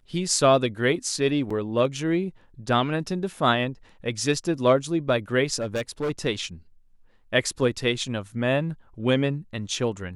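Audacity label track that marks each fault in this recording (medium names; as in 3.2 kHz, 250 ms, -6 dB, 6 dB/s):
1.500000	1.500000	dropout 5 ms
5.610000	6.110000	clipped -23 dBFS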